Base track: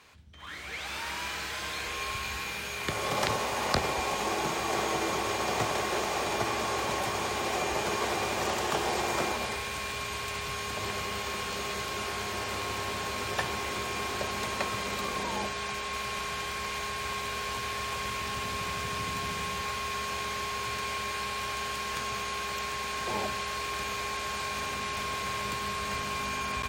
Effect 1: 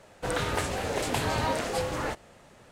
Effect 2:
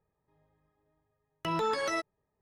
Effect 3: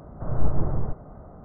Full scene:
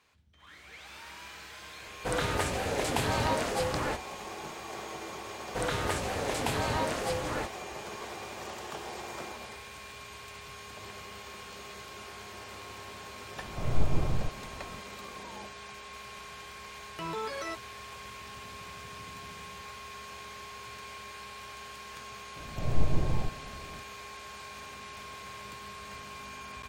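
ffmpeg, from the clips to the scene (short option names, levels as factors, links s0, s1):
-filter_complex "[1:a]asplit=2[s0][s1];[3:a]asplit=2[s2][s3];[0:a]volume=0.282[s4];[s3]lowpass=1000[s5];[s0]atrim=end=2.71,asetpts=PTS-STARTPTS,volume=0.891,afade=t=in:d=0.004:c=hsin,afade=t=out:st=2.706:d=0.004:c=hsin,adelay=1820[s6];[s1]atrim=end=2.71,asetpts=PTS-STARTPTS,volume=0.75,afade=t=in:d=0.004:c=hsin,afade=t=out:st=2.706:d=0.004:c=hsin,adelay=5320[s7];[s2]atrim=end=1.44,asetpts=PTS-STARTPTS,volume=0.631,afade=t=in:d=0.004:c=hsin,afade=t=out:st=1.436:d=0.004:c=hsin,adelay=13360[s8];[2:a]atrim=end=2.41,asetpts=PTS-STARTPTS,volume=0.501,afade=t=in:d=0.004:c=hsin,afade=t=out:st=2.406:d=0.004:c=hsin,adelay=15540[s9];[s5]atrim=end=1.44,asetpts=PTS-STARTPTS,volume=0.668,afade=t=in:d=0.004:c=hsin,afade=t=out:st=1.436:d=0.004:c=hsin,adelay=22360[s10];[s4][s6][s7][s8][s9][s10]amix=inputs=6:normalize=0"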